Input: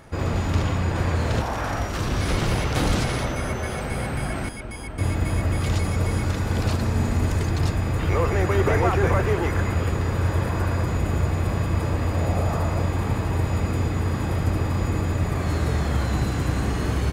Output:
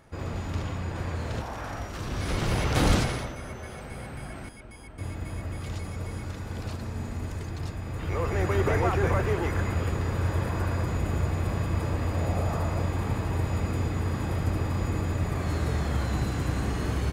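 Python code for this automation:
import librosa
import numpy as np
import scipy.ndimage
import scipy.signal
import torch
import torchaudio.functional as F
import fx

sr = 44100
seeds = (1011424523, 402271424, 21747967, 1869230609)

y = fx.gain(x, sr, db=fx.line((2.0, -9.0), (2.92, 0.5), (3.36, -11.5), (7.81, -11.5), (8.44, -4.5)))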